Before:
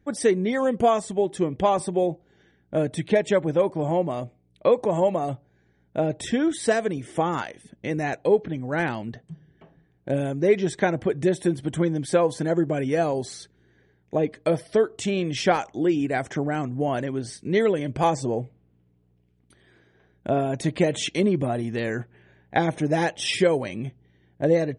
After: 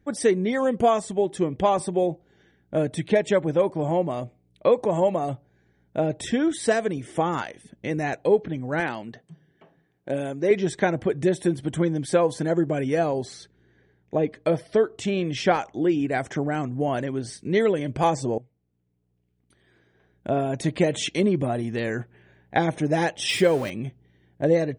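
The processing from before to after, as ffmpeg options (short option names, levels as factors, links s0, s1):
-filter_complex "[0:a]asettb=1/sr,asplit=3[s0][s1][s2];[s0]atrim=end=8.804[s3];[s1]atrim=start=8.8:end=10.51,asetpts=PTS-STARTPTS,afade=t=in:d=0.004:c=qsin,afade=t=out:st=1.706:d=0.004:c=qsin,highpass=f=300:p=1[s4];[s2]atrim=start=10.506[s5];[s3][s4]acrossfade=d=0.004:c1=hsin:c2=qsin[s6];[s6][s5]acrossfade=d=0.004:c1=qsin:c2=hsin,asettb=1/sr,asplit=3[s7][s8][s9];[s7]atrim=end=12.994[s10];[s8]atrim=start=12.99:end=16.12,asetpts=PTS-STARTPTS,afade=t=in:d=0.004:c=qsin,afade=t=out:st=3.126:d=0.004:c=qsin,highshelf=f=8100:g=-10.5[s11];[s9]atrim=start=16.116[s12];[s10][s11]acrossfade=d=0.004:c1=hsin:c2=qsin[s13];[s13][s12]acrossfade=d=0.004:c1=qsin:c2=hsin,asettb=1/sr,asplit=3[s14][s15][s16];[s14]atrim=end=23.294[s17];[s15]atrim=start=23.29:end=23.7,asetpts=PTS-STARTPTS,afade=t=in:d=0.004:c=qsin,afade=t=out:st=0.406:d=0.004:c=qsin,aeval=exprs='val(0)+0.5*0.02*sgn(val(0))':c=same[s18];[s16]atrim=start=23.696[s19];[s17][s18]acrossfade=d=0.004:c1=hsin:c2=qsin[s20];[s20][s19]acrossfade=d=0.004:c1=qsin:c2=hsin,asplit=2[s21][s22];[s21]atrim=end=18.38,asetpts=PTS-STARTPTS,afade=t=out:st=18.376:d=0.004:c=hsin:silence=0.125893[s23];[s22]atrim=start=18.38,asetpts=PTS-STARTPTS,afade=t=in:d=2.24:silence=0.125893[s24];[s23][s24]concat=n=2:v=0:a=1"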